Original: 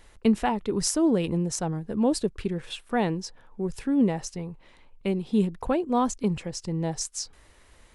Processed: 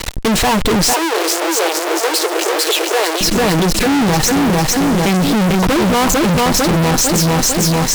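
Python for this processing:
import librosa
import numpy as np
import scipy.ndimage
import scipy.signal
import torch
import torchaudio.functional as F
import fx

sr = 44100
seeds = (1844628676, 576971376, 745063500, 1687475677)

y = scipy.signal.sosfilt(scipy.signal.butter(4, 8900.0, 'lowpass', fs=sr, output='sos'), x)
y = fx.peak_eq(y, sr, hz=4100.0, db=6.0, octaves=0.26)
y = y + 0.38 * np.pad(y, (int(6.4 * sr / 1000.0), 0))[:len(y)]
y = fx.echo_feedback(y, sr, ms=449, feedback_pct=48, wet_db=-5.5)
y = fx.leveller(y, sr, passes=5)
y = fx.fuzz(y, sr, gain_db=38.0, gate_db=-41.0)
y = fx.steep_highpass(y, sr, hz=340.0, slope=72, at=(0.93, 3.21))
y = y * 10.0 ** (1.0 / 20.0)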